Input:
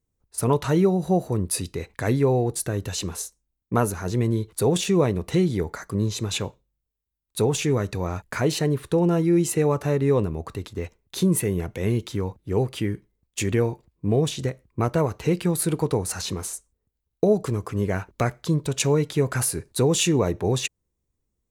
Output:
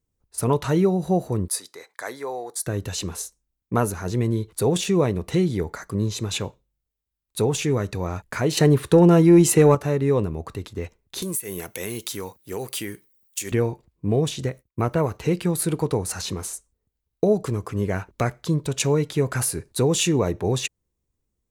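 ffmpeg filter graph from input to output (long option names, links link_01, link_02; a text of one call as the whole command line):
ffmpeg -i in.wav -filter_complex "[0:a]asettb=1/sr,asplit=3[link_01][link_02][link_03];[link_01]atrim=end=1.484[link_04];[link_02]atrim=start=1.48:end=2.67,asetpts=PTS-STARTPTS,afade=type=in:duration=0.004:curve=qsin,afade=type=out:start_time=1.186:duration=0.004:curve=qsin,highpass=760,equalizer=frequency=2700:width=4.3:gain=-14.5[link_05];[link_03]atrim=start=2.666[link_06];[link_04][link_05]acrossfade=duration=0.004:curve1=hsin:curve2=qsin[link_07];[link_07][link_06]acrossfade=duration=0.004:curve1=qsin:curve2=hsin,asettb=1/sr,asplit=3[link_08][link_09][link_10];[link_08]atrim=end=8.574[link_11];[link_09]atrim=start=8.57:end=9.75,asetpts=PTS-STARTPTS,afade=type=in:duration=0.004:curve=qsin,afade=type=out:start_time=1.176:duration=0.004:curve=qsin,highpass=63,acontrast=83[link_12];[link_10]atrim=start=9.746[link_13];[link_11][link_12]acrossfade=duration=0.004:curve1=hsin:curve2=qsin[link_14];[link_14][link_13]acrossfade=duration=0.004:curve1=qsin:curve2=hsin,asettb=1/sr,asplit=3[link_15][link_16][link_17];[link_15]atrim=end=11.224[link_18];[link_16]atrim=start=11.22:end=13.52,asetpts=PTS-STARTPTS,afade=type=in:duration=0.004:curve=qsin,afade=type=out:start_time=2.296:duration=0.004:curve=qsin,aemphasis=mode=production:type=riaa,acompressor=threshold=-24dB:ratio=8:attack=3.2:release=140:knee=1:detection=peak[link_19];[link_17]atrim=start=13.516[link_20];[link_18][link_19]acrossfade=duration=0.004:curve1=hsin:curve2=qsin[link_21];[link_21][link_20]acrossfade=duration=0.004:curve1=qsin:curve2=hsin,asettb=1/sr,asplit=3[link_22][link_23][link_24];[link_22]atrim=end=14.474[link_25];[link_23]atrim=start=14.47:end=15.17,asetpts=PTS-STARTPTS,afade=type=in:duration=0.004:curve=qsin,afade=type=out:start_time=0.696:duration=0.004:curve=qsin,aemphasis=mode=production:type=50kf,acrossover=split=3300[link_26][link_27];[link_27]acompressor=threshold=-51dB:ratio=4:attack=1:release=60[link_28];[link_26][link_28]amix=inputs=2:normalize=0,agate=range=-33dB:threshold=-50dB:ratio=3:release=100:detection=peak[link_29];[link_24]atrim=start=15.166[link_30];[link_25][link_29]acrossfade=duration=0.004:curve1=hsin:curve2=qsin[link_31];[link_31][link_30]acrossfade=duration=0.004:curve1=qsin:curve2=hsin" out.wav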